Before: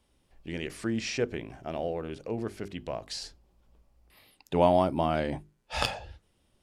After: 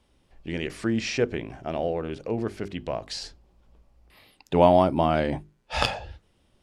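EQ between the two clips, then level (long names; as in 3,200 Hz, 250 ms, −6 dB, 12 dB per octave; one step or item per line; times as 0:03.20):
high-shelf EQ 9,500 Hz −11.5 dB
+5.0 dB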